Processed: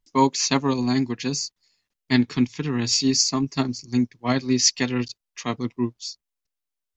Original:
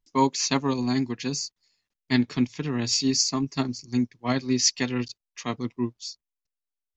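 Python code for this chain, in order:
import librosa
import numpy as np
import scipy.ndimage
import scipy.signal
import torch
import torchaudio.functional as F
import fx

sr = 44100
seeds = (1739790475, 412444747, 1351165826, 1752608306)

y = fx.peak_eq(x, sr, hz=620.0, db=-10.0, octaves=0.29, at=(2.23, 2.86))
y = y * 10.0 ** (3.0 / 20.0)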